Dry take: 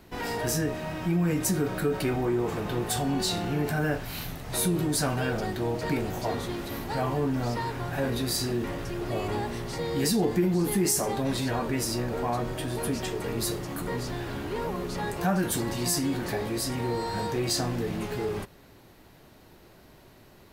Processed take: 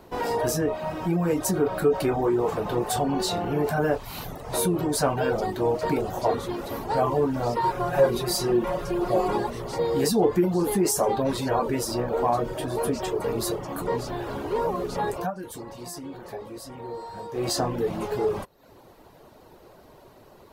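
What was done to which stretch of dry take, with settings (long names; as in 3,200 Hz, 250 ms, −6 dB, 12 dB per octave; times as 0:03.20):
0:07.63–0:09.50: comb filter 5.6 ms, depth 81%
0:15.15–0:17.48: duck −11.5 dB, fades 0.16 s
whole clip: reverb reduction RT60 0.57 s; graphic EQ with 10 bands 500 Hz +8 dB, 1,000 Hz +7 dB, 2,000 Hz −3 dB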